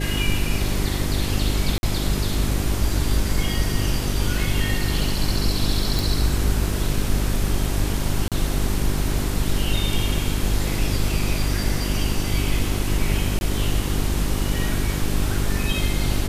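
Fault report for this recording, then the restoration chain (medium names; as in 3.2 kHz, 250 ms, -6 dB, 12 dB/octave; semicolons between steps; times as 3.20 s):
hum 50 Hz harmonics 8 -25 dBFS
1.78–1.83 s: dropout 51 ms
5.99 s: pop
8.28–8.32 s: dropout 37 ms
13.39–13.41 s: dropout 21 ms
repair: de-click; de-hum 50 Hz, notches 8; interpolate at 1.78 s, 51 ms; interpolate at 8.28 s, 37 ms; interpolate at 13.39 s, 21 ms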